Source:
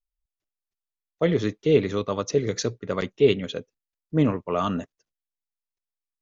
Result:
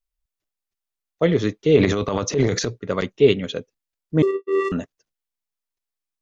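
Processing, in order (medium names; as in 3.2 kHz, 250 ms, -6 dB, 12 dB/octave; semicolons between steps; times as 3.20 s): 1.76–2.69 s: transient shaper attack -7 dB, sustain +10 dB; 4.22–4.72 s: vocoder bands 4, square 389 Hz; trim +3.5 dB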